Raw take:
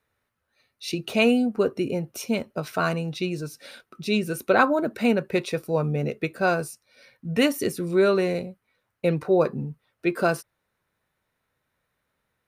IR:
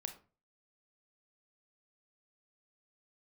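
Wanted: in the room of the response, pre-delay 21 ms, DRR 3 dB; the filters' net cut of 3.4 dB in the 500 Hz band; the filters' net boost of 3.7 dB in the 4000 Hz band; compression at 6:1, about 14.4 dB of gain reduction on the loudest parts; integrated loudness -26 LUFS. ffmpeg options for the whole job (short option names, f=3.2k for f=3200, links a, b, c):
-filter_complex "[0:a]equalizer=f=500:t=o:g=-4.5,equalizer=f=4k:t=o:g=5,acompressor=threshold=-31dB:ratio=6,asplit=2[a][b];[1:a]atrim=start_sample=2205,adelay=21[c];[b][c]afir=irnorm=-1:irlink=0,volume=-0.5dB[d];[a][d]amix=inputs=2:normalize=0,volume=7.5dB"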